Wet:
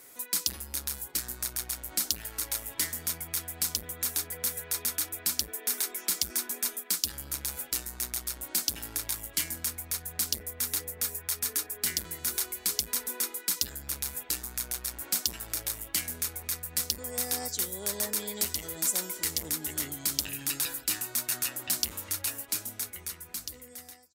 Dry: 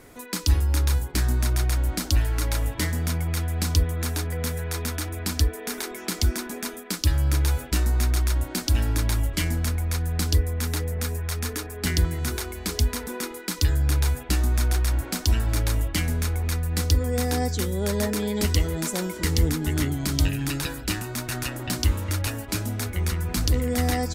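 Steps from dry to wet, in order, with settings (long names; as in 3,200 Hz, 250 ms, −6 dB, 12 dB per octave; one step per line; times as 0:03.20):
fade-out on the ending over 2.21 s
RIAA equalisation recording
saturating transformer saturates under 3,900 Hz
level −8 dB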